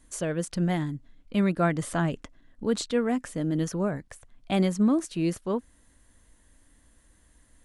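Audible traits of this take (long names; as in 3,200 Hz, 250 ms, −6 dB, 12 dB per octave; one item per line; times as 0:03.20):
background noise floor −62 dBFS
spectral slope −6.5 dB per octave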